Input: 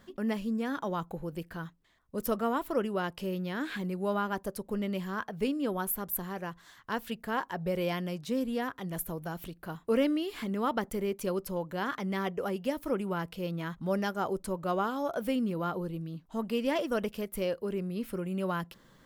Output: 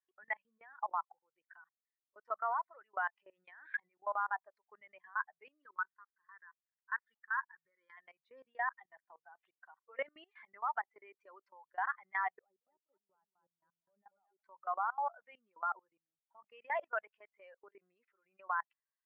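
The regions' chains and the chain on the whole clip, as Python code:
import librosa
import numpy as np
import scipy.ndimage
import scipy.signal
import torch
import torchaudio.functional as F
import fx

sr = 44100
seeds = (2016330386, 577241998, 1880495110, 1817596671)

y = fx.chain(x, sr, fx.fixed_phaser(hz=2600.0, stages=6),
    fx.sample_gate(floor_db=-51.5), at=(5.62, 7.97))
y = fx.chain(y, sr, fx.transient(attack_db=-7, sustain_db=-2),
    fx.bandpass_q(hz=130.0, q=0.85),
    fx.echo_single(ms=222, db=-4.5), at=(12.39, 14.42))
y = fx.bin_expand(y, sr, power=2.0)
y = scipy.signal.sosfilt(scipy.signal.ellip(3, 1.0, 80, [750.0, 2000.0], 'bandpass', fs=sr, output='sos'), y)
y = fx.level_steps(y, sr, step_db=23)
y = F.gain(torch.from_numpy(y), 12.5).numpy()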